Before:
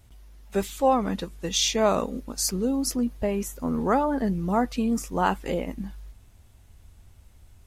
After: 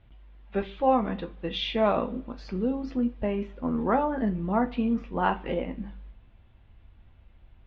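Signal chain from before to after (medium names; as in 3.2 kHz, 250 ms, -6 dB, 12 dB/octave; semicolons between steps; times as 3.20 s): steep low-pass 3.4 kHz 36 dB/octave; on a send: reverberation, pre-delay 3 ms, DRR 6 dB; on the sum: trim -2.5 dB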